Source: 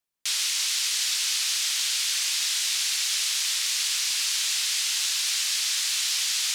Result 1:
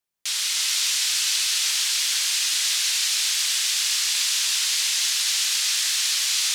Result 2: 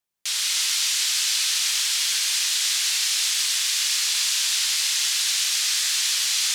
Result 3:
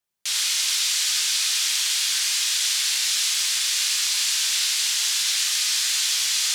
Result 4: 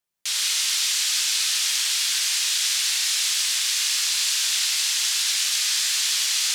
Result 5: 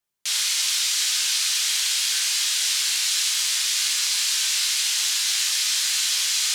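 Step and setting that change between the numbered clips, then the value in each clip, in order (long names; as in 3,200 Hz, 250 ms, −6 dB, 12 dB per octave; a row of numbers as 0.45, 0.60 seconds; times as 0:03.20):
reverb whose tail is shaped and stops, gate: 510, 320, 140, 210, 90 milliseconds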